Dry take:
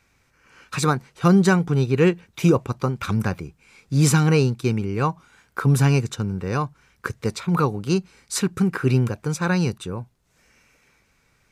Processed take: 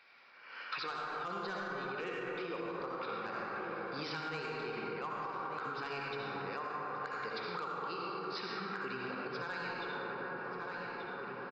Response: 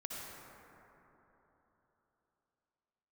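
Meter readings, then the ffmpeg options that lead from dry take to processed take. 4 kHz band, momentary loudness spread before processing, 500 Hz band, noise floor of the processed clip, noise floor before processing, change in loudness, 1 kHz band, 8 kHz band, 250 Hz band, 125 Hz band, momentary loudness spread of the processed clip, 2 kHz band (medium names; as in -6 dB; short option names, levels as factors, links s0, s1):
-11.5 dB, 15 LU, -15.5 dB, -48 dBFS, -64 dBFS, -18.5 dB, -9.0 dB, under -30 dB, -24.5 dB, -32.0 dB, 2 LU, -9.0 dB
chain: -filter_complex "[0:a]highpass=620,aresample=11025,aresample=44100,aresample=16000,asoftclip=type=hard:threshold=0.141,aresample=44100,asplit=2[s0][s1];[s1]adelay=1182,lowpass=f=3000:p=1,volume=0.188,asplit=2[s2][s3];[s3]adelay=1182,lowpass=f=3000:p=1,volume=0.49,asplit=2[s4][s5];[s5]adelay=1182,lowpass=f=3000:p=1,volume=0.49,asplit=2[s6][s7];[s7]adelay=1182,lowpass=f=3000:p=1,volume=0.49,asplit=2[s8][s9];[s9]adelay=1182,lowpass=f=3000:p=1,volume=0.49[s10];[s0][s2][s4][s6][s8][s10]amix=inputs=6:normalize=0[s11];[1:a]atrim=start_sample=2205[s12];[s11][s12]afir=irnorm=-1:irlink=0,alimiter=level_in=1.12:limit=0.0631:level=0:latency=1:release=108,volume=0.891,acompressor=threshold=0.00447:ratio=5,volume=2.51"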